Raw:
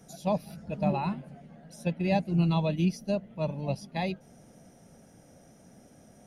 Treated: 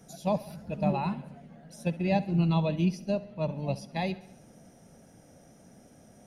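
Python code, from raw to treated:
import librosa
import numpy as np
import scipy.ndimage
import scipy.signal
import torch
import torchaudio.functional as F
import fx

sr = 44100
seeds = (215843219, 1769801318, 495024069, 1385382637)

y = fx.high_shelf(x, sr, hz=6700.0, db=-7.0, at=(1.88, 3.57))
y = fx.echo_feedback(y, sr, ms=67, feedback_pct=57, wet_db=-18)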